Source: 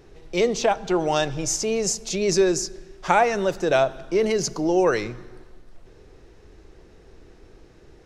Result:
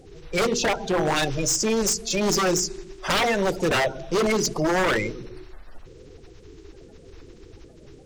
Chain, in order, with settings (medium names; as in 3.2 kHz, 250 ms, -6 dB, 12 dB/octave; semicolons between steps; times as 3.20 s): coarse spectral quantiser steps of 30 dB; hum notches 60/120/180/240/300/360/420/480 Hz; wavefolder -19.5 dBFS; trim +3.5 dB